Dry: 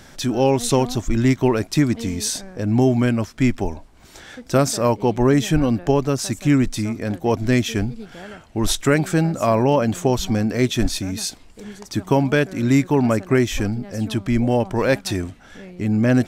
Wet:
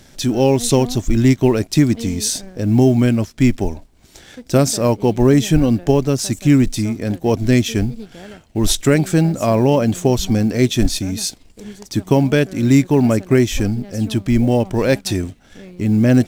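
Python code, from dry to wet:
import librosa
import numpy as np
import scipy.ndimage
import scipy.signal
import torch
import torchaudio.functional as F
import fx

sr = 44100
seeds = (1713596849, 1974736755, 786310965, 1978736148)

y = fx.law_mismatch(x, sr, coded='A')
y = fx.peak_eq(y, sr, hz=1200.0, db=-7.5, octaves=1.7)
y = y * 10.0 ** (5.0 / 20.0)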